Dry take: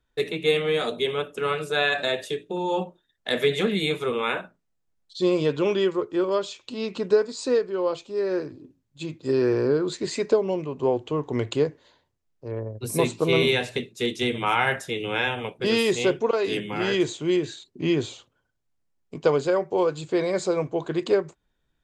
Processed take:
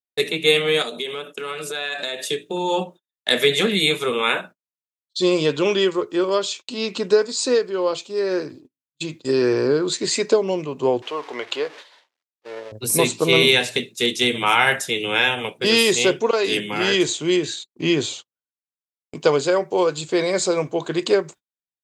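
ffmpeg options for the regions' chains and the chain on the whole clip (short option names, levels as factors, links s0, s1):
-filter_complex "[0:a]asettb=1/sr,asplit=3[s0][s1][s2];[s0]atrim=end=0.824[s3];[s1]atrim=start=0.82:end=2.31,asetpts=PTS-STARTPTS,afade=t=in:d=0.004:c=qsin,afade=t=out:st=1.486:d=0.004:c=qsin,highpass=f=150:w=0.5412,highpass=f=150:w=1.3066,acompressor=threshold=0.0282:ratio=4:attack=3.2:release=140:knee=1:detection=peak[s4];[s2]atrim=start=2.306[s5];[s3][s4]acrossfade=d=0.004:c1=hsin:c2=qsin[s6];[s6][s5]acrossfade=d=0.004:c1=qsin:c2=hsin,asettb=1/sr,asplit=3[s7][s8][s9];[s7]atrim=end=11.024[s10];[s8]atrim=start=11.02:end=12.72,asetpts=PTS-STARTPTS,afade=t=in:d=0.004:c=qsin,afade=t=out:st=1.696:d=0.004:c=qsin,aeval=exprs='val(0)+0.5*0.0126*sgn(val(0))':c=same,highpass=600,lowpass=3500[s11];[s9]atrim=start=12.716[s12];[s10][s11]acrossfade=d=0.004:c1=hsin:c2=qsin[s13];[s13][s12]acrossfade=d=0.004:c1=qsin:c2=hsin,highpass=130,agate=range=0.0178:threshold=0.00708:ratio=16:detection=peak,highshelf=f=2500:g=10.5,volume=1.41"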